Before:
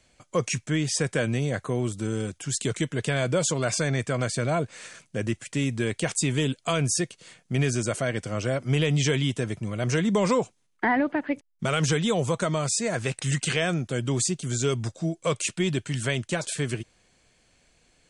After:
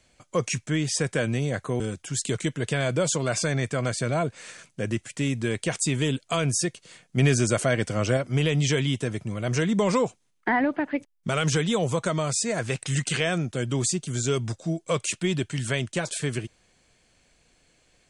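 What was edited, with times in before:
1.80–2.16 s: delete
7.53–8.53 s: gain +4 dB

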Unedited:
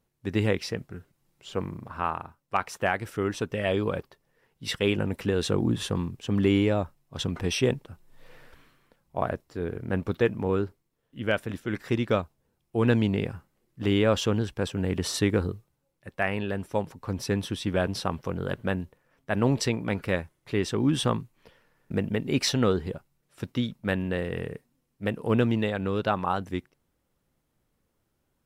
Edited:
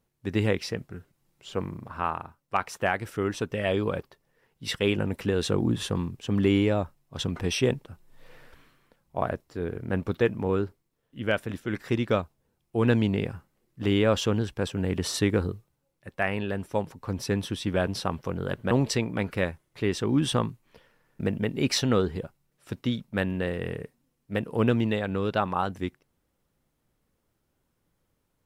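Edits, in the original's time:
18.71–19.42 s: delete

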